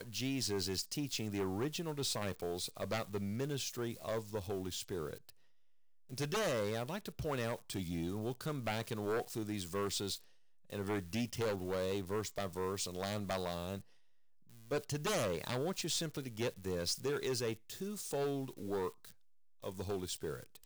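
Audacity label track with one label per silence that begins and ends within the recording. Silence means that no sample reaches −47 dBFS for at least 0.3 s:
5.300000	6.090000	silence
10.240000	10.700000	silence
13.810000	14.500000	silence
19.120000	19.620000	silence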